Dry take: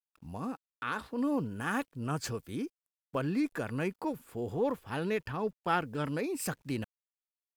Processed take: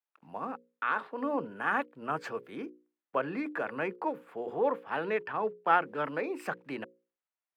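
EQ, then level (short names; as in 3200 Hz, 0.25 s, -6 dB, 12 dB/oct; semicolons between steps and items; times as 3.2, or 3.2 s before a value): HPF 150 Hz 24 dB/oct; three-band isolator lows -14 dB, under 420 Hz, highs -24 dB, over 2600 Hz; notches 60/120/180/240/300/360/420/480/540 Hz; +6.0 dB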